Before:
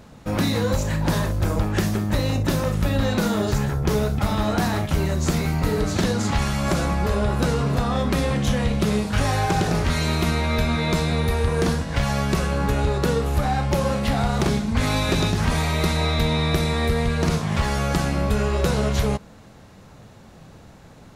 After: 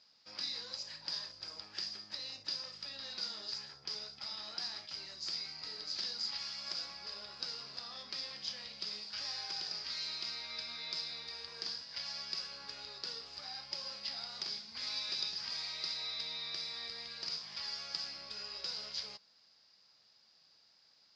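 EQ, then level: band-pass 4900 Hz, Q 20; air absorption 150 m; +14.0 dB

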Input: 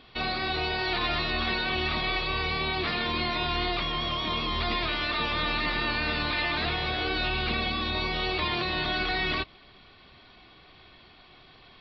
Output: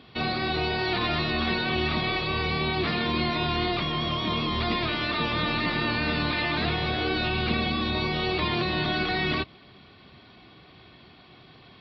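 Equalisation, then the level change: HPF 120 Hz 12 dB/oct; low shelf 290 Hz +12 dB; 0.0 dB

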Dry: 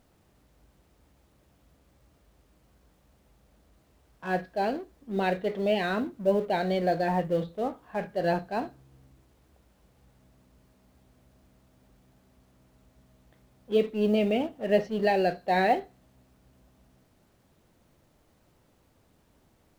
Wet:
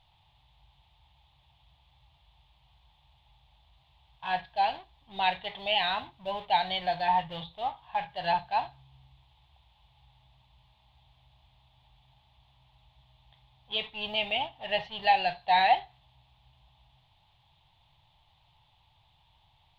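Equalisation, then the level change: EQ curve 140 Hz 0 dB, 210 Hz -21 dB, 490 Hz -20 dB, 870 Hz +9 dB, 1400 Hz -11 dB, 3500 Hz +14 dB, 5600 Hz -12 dB, 8100 Hz -16 dB; dynamic EQ 1600 Hz, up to +5 dB, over -48 dBFS, Q 1.5; 0.0 dB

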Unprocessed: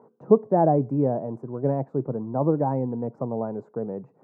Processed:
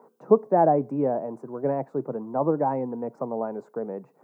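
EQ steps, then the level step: HPF 140 Hz 24 dB/oct; tilt +3 dB/oct; +3.0 dB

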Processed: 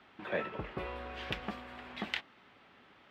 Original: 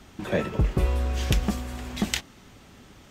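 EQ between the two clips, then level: HPF 1400 Hz 6 dB/oct; air absorption 430 m; +1.5 dB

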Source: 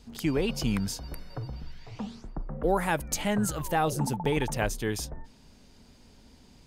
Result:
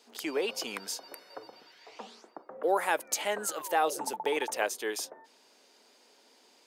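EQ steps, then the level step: HPF 380 Hz 24 dB/oct; 0.0 dB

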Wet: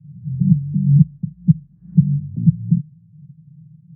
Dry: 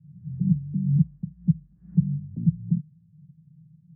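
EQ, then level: HPF 60 Hz; air absorption 420 m; bell 120 Hz +7.5 dB 1.2 oct; +3.5 dB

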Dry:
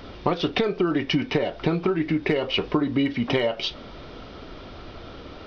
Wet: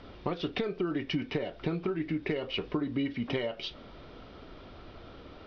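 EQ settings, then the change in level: dynamic EQ 870 Hz, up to -4 dB, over -39 dBFS, Q 1.2; air absorption 80 m; -8.0 dB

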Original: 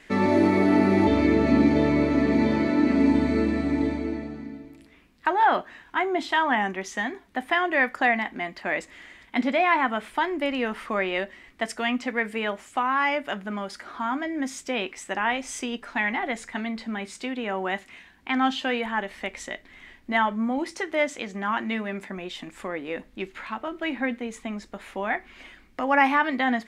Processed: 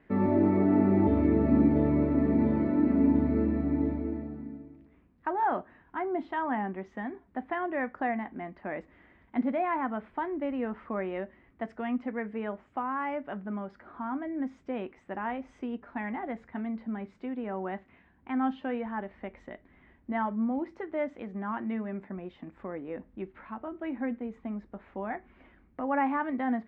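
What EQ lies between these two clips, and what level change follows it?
HPF 56 Hz; LPF 1300 Hz 12 dB/oct; low shelf 230 Hz +9.5 dB; -7.5 dB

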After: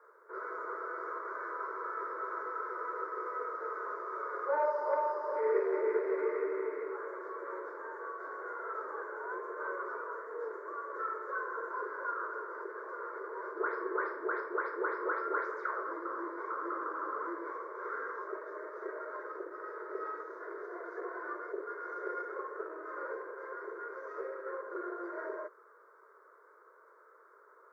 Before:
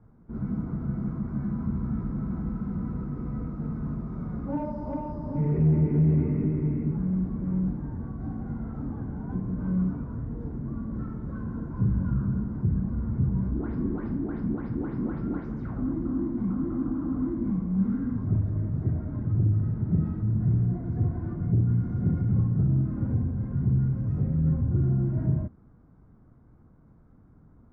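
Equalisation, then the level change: steep high-pass 390 Hz 72 dB/oct; bell 1500 Hz +10 dB 2 oct; fixed phaser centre 760 Hz, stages 6; +6.0 dB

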